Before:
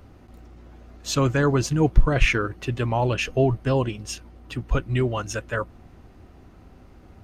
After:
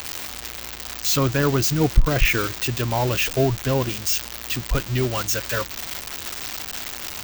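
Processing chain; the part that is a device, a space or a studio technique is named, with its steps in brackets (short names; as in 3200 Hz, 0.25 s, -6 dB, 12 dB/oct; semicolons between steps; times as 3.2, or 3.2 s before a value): budget class-D amplifier (switching dead time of 0.056 ms; switching spikes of -11.5 dBFS)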